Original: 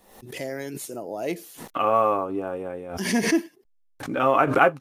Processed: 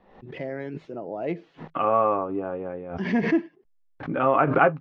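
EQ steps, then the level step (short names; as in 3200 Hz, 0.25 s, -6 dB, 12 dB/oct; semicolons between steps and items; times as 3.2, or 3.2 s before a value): LPF 2700 Hz 12 dB/oct; air absorption 200 m; bell 160 Hz +8.5 dB 0.21 oct; 0.0 dB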